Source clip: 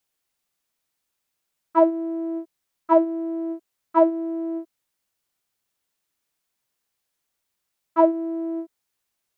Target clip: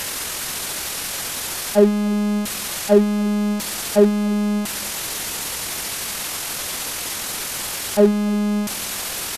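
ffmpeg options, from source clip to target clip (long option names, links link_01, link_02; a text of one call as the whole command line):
ffmpeg -i in.wav -filter_complex "[0:a]aeval=exprs='val(0)+0.5*0.0794*sgn(val(0))':channel_layout=same,asplit=2[link_01][link_02];[link_02]adelay=297.4,volume=-25dB,highshelf=frequency=4000:gain=-6.69[link_03];[link_01][link_03]amix=inputs=2:normalize=0,asetrate=27781,aresample=44100,atempo=1.5874,volume=2dB" out.wav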